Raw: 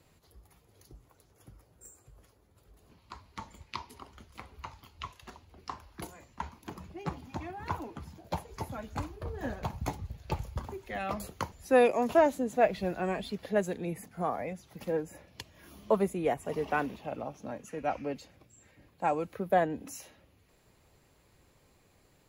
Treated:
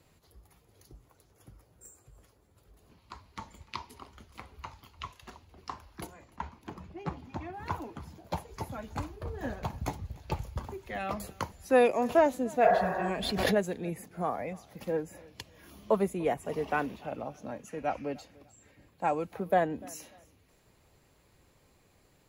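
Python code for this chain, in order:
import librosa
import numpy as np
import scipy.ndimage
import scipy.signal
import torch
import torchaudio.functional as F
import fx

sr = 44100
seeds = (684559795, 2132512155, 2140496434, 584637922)

y = fx.lowpass(x, sr, hz=3500.0, slope=6, at=(6.06, 7.54))
y = fx.spec_repair(y, sr, seeds[0], start_s=12.67, length_s=0.41, low_hz=270.0, high_hz=2000.0, source='both')
y = fx.echo_feedback(y, sr, ms=296, feedback_pct=29, wet_db=-23.5)
y = fx.pre_swell(y, sr, db_per_s=32.0, at=(13.03, 13.54), fade=0.02)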